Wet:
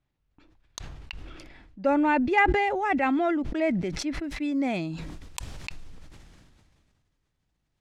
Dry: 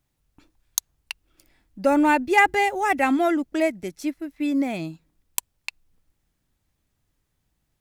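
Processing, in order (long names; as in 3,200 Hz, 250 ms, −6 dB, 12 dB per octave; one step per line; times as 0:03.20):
low-pass filter 3,500 Hz 12 dB per octave, from 0:04.24 6,100 Hz
level that may fall only so fast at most 28 dB per second
level −4.5 dB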